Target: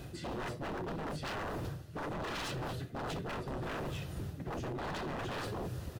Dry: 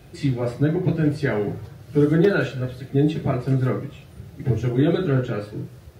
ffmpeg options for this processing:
ffmpeg -i in.wav -filter_complex "[0:a]asplit=3[link_01][link_02][link_03];[link_02]asetrate=33038,aresample=44100,atempo=1.33484,volume=-8dB[link_04];[link_03]asetrate=37084,aresample=44100,atempo=1.18921,volume=-17dB[link_05];[link_01][link_04][link_05]amix=inputs=3:normalize=0,areverse,acompressor=threshold=-29dB:ratio=20,areverse,aeval=exprs='0.0158*(abs(mod(val(0)/0.0158+3,4)-2)-1)':channel_layout=same,bandreject=frequency=2200:width=11,volume=2.5dB" out.wav

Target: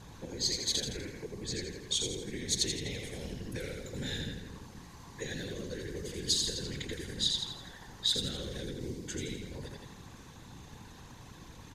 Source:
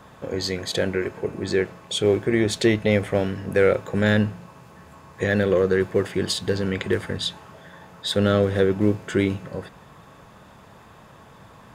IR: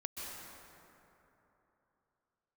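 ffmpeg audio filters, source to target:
-filter_complex "[0:a]aecho=1:1:83|166|249|332|415|498:0.668|0.314|0.148|0.0694|0.0326|0.0153,acrossover=split=120|3700[link_01][link_02][link_03];[link_01]asoftclip=type=tanh:threshold=-37.5dB[link_04];[link_02]acompressor=threshold=-33dB:ratio=6[link_05];[link_04][link_05][link_03]amix=inputs=3:normalize=0,aeval=exprs='val(0)+0.00562*(sin(2*PI*60*n/s)+sin(2*PI*2*60*n/s)/2+sin(2*PI*3*60*n/s)/3+sin(2*PI*4*60*n/s)/4+sin(2*PI*5*60*n/s)/5)':channel_layout=same,aeval=exprs='val(0)*gte(abs(val(0)),0.00335)':channel_layout=same,afftfilt=real='hypot(re,im)*cos(2*PI*random(0))':imag='hypot(re,im)*sin(2*PI*random(1))':win_size=512:overlap=0.75,equalizer=frequency=630:width_type=o:width=0.33:gain=-11,equalizer=frequency=1250:width_type=o:width=0.33:gain=-9,equalizer=frequency=4000:width_type=o:width=0.33:gain=7,equalizer=frequency=6300:width_type=o:width=0.33:gain=9" -ar 48000 -c:a mp2 -b:a 192k

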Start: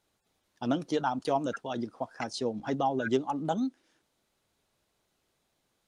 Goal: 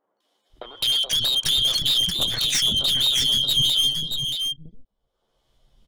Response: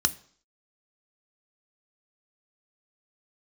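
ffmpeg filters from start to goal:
-filter_complex "[0:a]afftfilt=real='real(if(lt(b,272),68*(eq(floor(b/68),0)*1+eq(floor(b/68),1)*3+eq(floor(b/68),2)*0+eq(floor(b/68),3)*2)+mod(b,68),b),0)':imag='imag(if(lt(b,272),68*(eq(floor(b/68),0)*1+eq(floor(b/68),1)*3+eq(floor(b/68),2)*0+eq(floor(b/68),3)*2)+mod(b,68),b),0)':win_size=2048:overlap=0.75,agate=range=-34dB:threshold=-59dB:ratio=16:detection=peak,anlmdn=0.000398,highshelf=frequency=4600:gain=9.5,acompressor=mode=upward:threshold=-26dB:ratio=2.5,alimiter=limit=-19dB:level=0:latency=1:release=78,acompressor=threshold=-30dB:ratio=10,aeval=exprs='clip(val(0),-1,0.0224)':channel_layout=same,acrossover=split=350|1500[link_01][link_02][link_03];[link_03]adelay=210[link_04];[link_01]adelay=540[link_05];[link_05][link_02][link_04]amix=inputs=3:normalize=0,aeval=exprs='0.0841*sin(PI/2*2.82*val(0)/0.0841)':channel_layout=same,asplit=2[link_06][link_07];[link_07]aecho=0:1:628:0.531[link_08];[link_06][link_08]amix=inputs=2:normalize=0,volume=4dB"

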